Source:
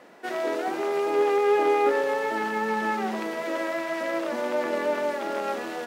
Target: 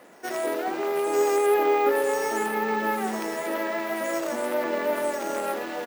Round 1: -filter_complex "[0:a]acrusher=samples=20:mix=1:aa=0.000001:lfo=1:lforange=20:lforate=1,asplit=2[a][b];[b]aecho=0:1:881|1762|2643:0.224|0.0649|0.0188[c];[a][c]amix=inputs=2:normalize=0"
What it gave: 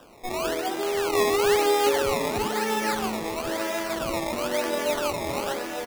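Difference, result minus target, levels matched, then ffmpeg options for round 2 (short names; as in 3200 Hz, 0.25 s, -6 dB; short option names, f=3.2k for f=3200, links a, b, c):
decimation with a swept rate: distortion +15 dB
-filter_complex "[0:a]acrusher=samples=4:mix=1:aa=0.000001:lfo=1:lforange=4:lforate=1,asplit=2[a][b];[b]aecho=0:1:881|1762|2643:0.224|0.0649|0.0188[c];[a][c]amix=inputs=2:normalize=0"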